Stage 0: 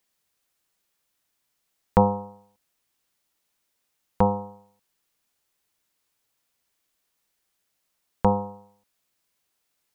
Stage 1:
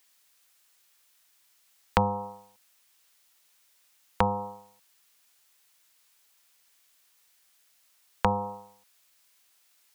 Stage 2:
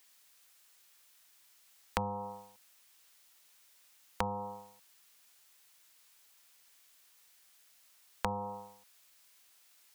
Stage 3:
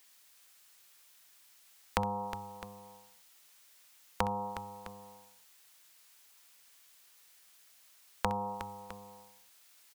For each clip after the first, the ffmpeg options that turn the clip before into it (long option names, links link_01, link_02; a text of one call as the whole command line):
ffmpeg -i in.wav -filter_complex "[0:a]acrossover=split=160[link_01][link_02];[link_02]acompressor=threshold=-27dB:ratio=4[link_03];[link_01][link_03]amix=inputs=2:normalize=0,tiltshelf=frequency=640:gain=-7.5,volume=3.5dB" out.wav
ffmpeg -i in.wav -af "acompressor=threshold=-37dB:ratio=2.5,volume=1dB" out.wav
ffmpeg -i in.wav -af "aecho=1:1:64|363|659:0.168|0.282|0.178,volume=2dB" out.wav